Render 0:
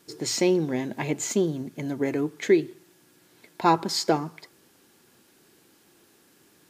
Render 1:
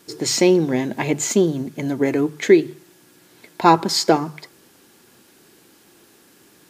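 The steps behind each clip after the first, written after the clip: hum notches 50/100/150 Hz; trim +7 dB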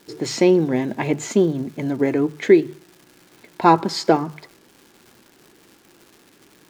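low-pass 2.5 kHz 6 dB/octave; crackle 310 per s -38 dBFS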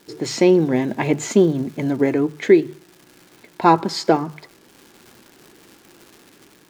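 level rider gain up to 3.5 dB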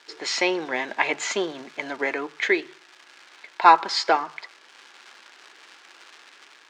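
high-pass 1.1 kHz 12 dB/octave; distance through air 120 m; trim +7 dB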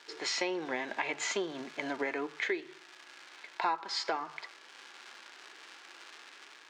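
harmonic-percussive split percussive -6 dB; compression 4:1, threshold -31 dBFS, peak gain reduction 16 dB

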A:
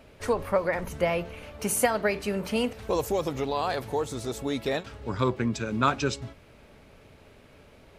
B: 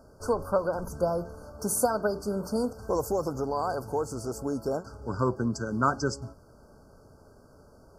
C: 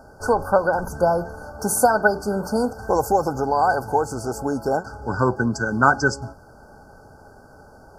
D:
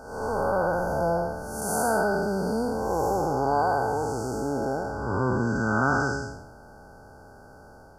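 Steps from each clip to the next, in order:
FFT band-reject 1.6–4.4 kHz; trim -1 dB
small resonant body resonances 810/1500 Hz, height 13 dB, ringing for 30 ms; trim +6 dB
spectral blur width 293 ms

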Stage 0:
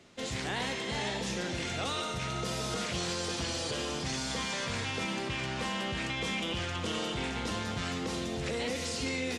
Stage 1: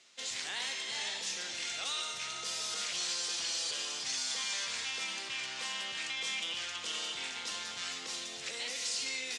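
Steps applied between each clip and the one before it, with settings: frequency weighting ITU-R 468; trim -8.5 dB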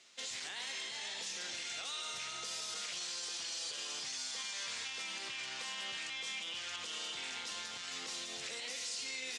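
peak limiter -32.5 dBFS, peak gain reduction 8.5 dB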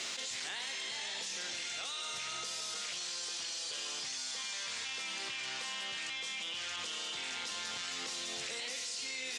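level flattener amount 100%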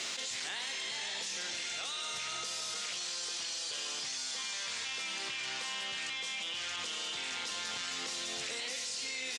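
echo from a far wall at 89 m, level -13 dB; trim +1.5 dB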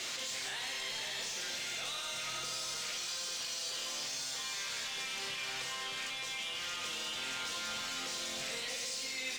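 saturation -35 dBFS, distortion -15 dB; on a send at -1.5 dB: reverberation RT60 1.1 s, pre-delay 8 ms

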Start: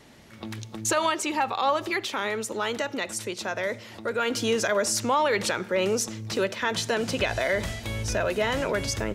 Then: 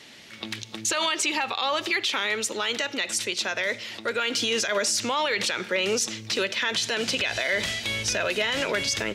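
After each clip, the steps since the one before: frequency weighting D; peak limiter -15.5 dBFS, peak gain reduction 10 dB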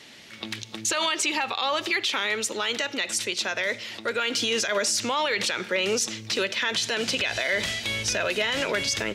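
no audible change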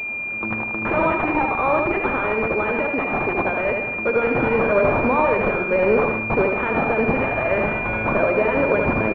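feedback delay 77 ms, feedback 46%, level -4.5 dB; class-D stage that switches slowly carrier 2.4 kHz; trim +8.5 dB

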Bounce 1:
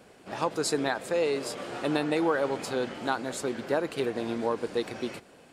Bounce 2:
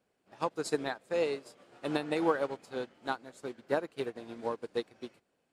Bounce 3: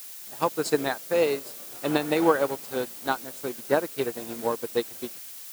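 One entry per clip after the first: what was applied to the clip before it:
upward expansion 2.5:1, over -38 dBFS
added noise blue -49 dBFS; trim +7.5 dB

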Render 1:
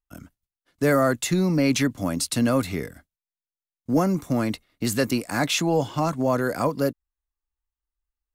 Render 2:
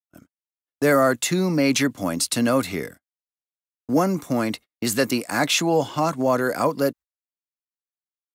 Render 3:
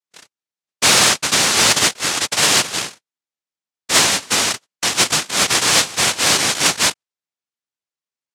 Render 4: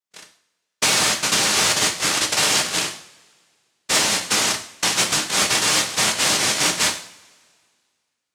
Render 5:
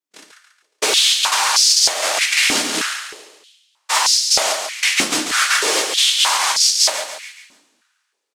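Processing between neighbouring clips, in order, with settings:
gate -39 dBFS, range -37 dB; high-pass 250 Hz 6 dB/octave; trim +3.5 dB
noise-vocoded speech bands 1; in parallel at -6.5 dB: overload inside the chain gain 16 dB; on the sum: trim +2 dB
compression, threshold -17 dBFS, peak gain reduction 8 dB; two-slope reverb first 0.5 s, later 2 s, from -22 dB, DRR 3.5 dB
on a send: feedback delay 140 ms, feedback 43%, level -7 dB; on the sum: step-sequenced high-pass 3.2 Hz 270–5000 Hz; trim -1 dB

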